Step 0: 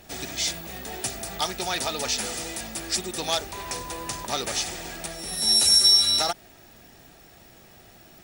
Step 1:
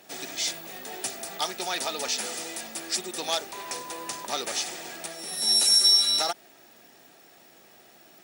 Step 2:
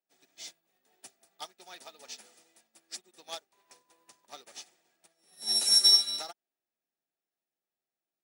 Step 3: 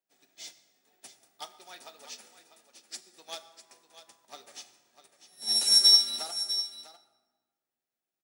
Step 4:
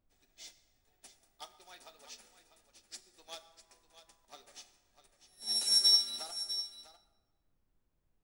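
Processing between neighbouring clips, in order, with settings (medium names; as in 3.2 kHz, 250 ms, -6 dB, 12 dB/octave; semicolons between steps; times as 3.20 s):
high-pass 260 Hz 12 dB/octave; trim -2 dB
upward expansion 2.5:1, over -44 dBFS
delay 649 ms -12.5 dB; reverberation RT60 1.3 s, pre-delay 6 ms, DRR 9.5 dB
added noise brown -69 dBFS; trim -6.5 dB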